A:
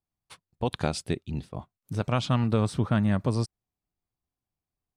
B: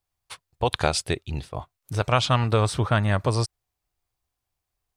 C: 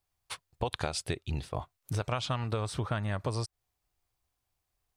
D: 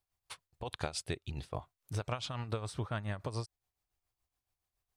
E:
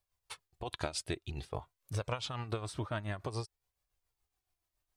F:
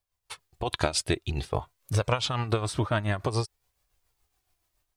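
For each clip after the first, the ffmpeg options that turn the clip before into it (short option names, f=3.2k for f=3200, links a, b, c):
-af "equalizer=f=210:w=1:g=-14,volume=9dB"
-af "acompressor=threshold=-29dB:ratio=6"
-af "tremolo=f=7.1:d=0.61,volume=-3dB"
-af "flanger=delay=1.7:depth=1.6:regen=51:speed=0.52:shape=triangular,volume=5dB"
-af "dynaudnorm=f=240:g=3:m=10.5dB"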